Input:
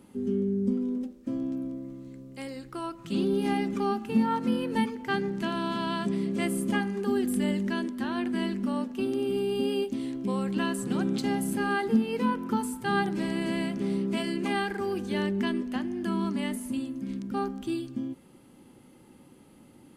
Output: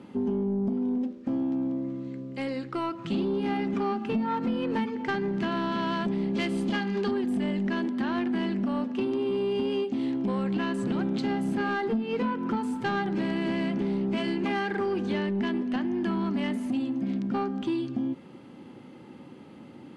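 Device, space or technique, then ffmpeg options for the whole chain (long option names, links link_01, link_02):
AM radio: -filter_complex "[0:a]asettb=1/sr,asplit=3[link_01][link_02][link_03];[link_01]atrim=end=6.354[link_04];[link_02]atrim=start=6.35:end=7.11,asetpts=PTS-STARTPTS,afade=type=in:duration=0.004:curve=qsin,afade=type=out:start_time=0.756:duration=0.004:curve=qsin,equalizer=frequency=4200:width=0.98:gain=11[link_05];[link_03]atrim=start=7.106[link_06];[link_04][link_05]acrossfade=duration=0.004:curve1=hsin:curve2=qsin[link_07];[link_07][link_06]acrossfade=duration=0.004:curve1=qsin:curve2=hsin,highpass=110,lowpass=3800,acompressor=threshold=-31dB:ratio=6,asoftclip=type=tanh:threshold=-28.5dB,volume=8dB"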